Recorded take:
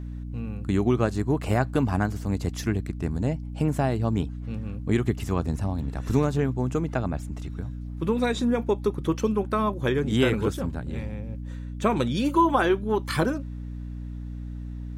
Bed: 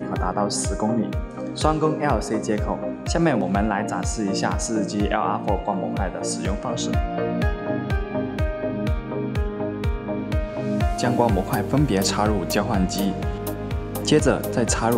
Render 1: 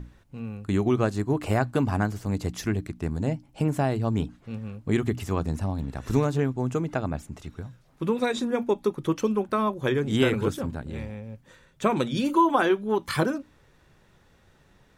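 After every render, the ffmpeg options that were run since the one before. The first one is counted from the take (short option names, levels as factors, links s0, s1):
-af "bandreject=f=60:t=h:w=6,bandreject=f=120:t=h:w=6,bandreject=f=180:t=h:w=6,bandreject=f=240:t=h:w=6,bandreject=f=300:t=h:w=6"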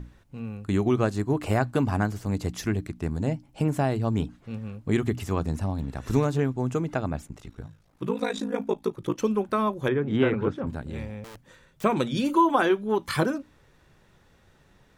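-filter_complex "[0:a]asplit=3[s0][s1][s2];[s0]afade=t=out:st=7.27:d=0.02[s3];[s1]aeval=exprs='val(0)*sin(2*PI*27*n/s)':c=same,afade=t=in:st=7.27:d=0.02,afade=t=out:st=9.17:d=0.02[s4];[s2]afade=t=in:st=9.17:d=0.02[s5];[s3][s4][s5]amix=inputs=3:normalize=0,asettb=1/sr,asplit=3[s6][s7][s8];[s6]atrim=end=9.884[s9];[s7]atrim=start=9.88:end=10.67,asetpts=PTS-STARTPTS,afade=t=in:d=0.004:c=qsin,afade=t=out:st=0.786:d=0.004:c=qsin,highpass=100,lowpass=2100[s10];[s8]atrim=start=10.666[s11];[s9][s10]acrossfade=d=0.004:c1=hsin:c2=qsin[s12];[s12][s11]acrossfade=d=0.004:c1=qsin:c2=hsin,asettb=1/sr,asplit=3[s13][s14][s15];[s13]atrim=end=11.244[s16];[s14]atrim=start=11.24:end=11.84,asetpts=PTS-STARTPTS,afade=t=in:d=0.004:c=qsin,afade=t=out:st=0.596:d=0.004:c=qsin,aeval=exprs='(mod(79.4*val(0)+1,2)-1)/79.4':c=same[s17];[s15]atrim=start=11.836[s18];[s16][s17]acrossfade=d=0.004:c1=hsin:c2=qsin[s19];[s19][s18]acrossfade=d=0.004:c1=qsin:c2=hsin"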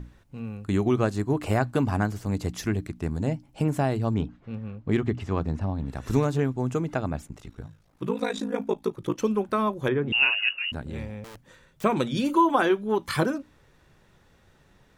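-filter_complex "[0:a]asettb=1/sr,asplit=3[s0][s1][s2];[s0]atrim=end=4.144[s3];[s1]atrim=start=4.14:end=5.86,asetpts=PTS-STARTPTS,afade=t=in:d=0.004:c=qsin,afade=t=out:st=1.716:d=0.004:c=qsin,adynamicsmooth=sensitivity=2:basefreq=3800[s4];[s2]atrim=start=5.856[s5];[s3][s4]acrossfade=d=0.004:c1=hsin:c2=qsin[s6];[s6][s5]acrossfade=d=0.004:c1=qsin:c2=hsin,asettb=1/sr,asplit=3[s7][s8][s9];[s7]atrim=end=10.124[s10];[s8]atrim=start=10.12:end=10.72,asetpts=PTS-STARTPTS,afade=t=in:d=0.004:c=qsin,afade=t=out:st=0.596:d=0.004:c=qsin,lowpass=f=2600:t=q:w=0.5098,lowpass=f=2600:t=q:w=0.6013,lowpass=f=2600:t=q:w=0.9,lowpass=f=2600:t=q:w=2.563,afreqshift=-3000[s11];[s9]atrim=start=10.716[s12];[s10][s11]acrossfade=d=0.004:c1=hsin:c2=qsin[s13];[s13][s12]acrossfade=d=0.004:c1=qsin:c2=hsin"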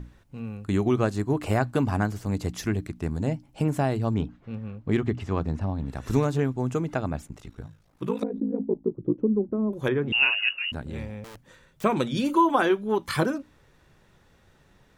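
-filter_complex "[0:a]asettb=1/sr,asplit=3[s0][s1][s2];[s0]atrim=end=8.234[s3];[s1]atrim=start=8.23:end=9.73,asetpts=PTS-STARTPTS,afade=t=in:d=0.004:c=qsin,afade=t=out:st=1.496:d=0.004:c=qsin,lowpass=f=330:t=q:w=1.6[s4];[s2]atrim=start=9.726[s5];[s3][s4]acrossfade=d=0.004:c1=hsin:c2=qsin[s6];[s6][s5]acrossfade=d=0.004:c1=qsin:c2=hsin"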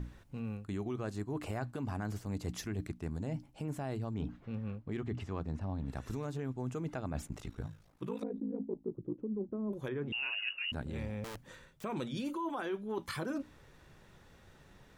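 -af "alimiter=limit=0.119:level=0:latency=1:release=99,areverse,acompressor=threshold=0.0178:ratio=6,areverse"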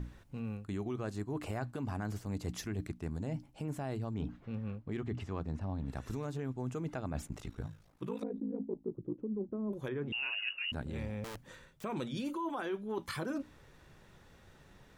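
-af anull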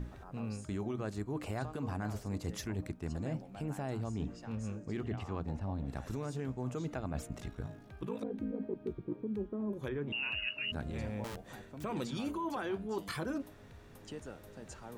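-filter_complex "[1:a]volume=0.0376[s0];[0:a][s0]amix=inputs=2:normalize=0"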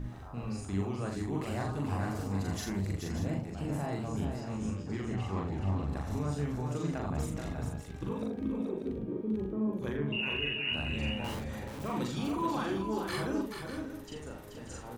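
-filter_complex "[0:a]asplit=2[s0][s1];[s1]adelay=41,volume=0.794[s2];[s0][s2]amix=inputs=2:normalize=0,asplit=2[s3][s4];[s4]aecho=0:1:42|431|588:0.596|0.531|0.316[s5];[s3][s5]amix=inputs=2:normalize=0"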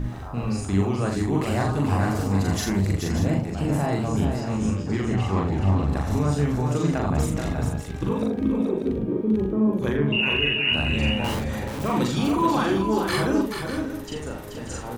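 -af "volume=3.55"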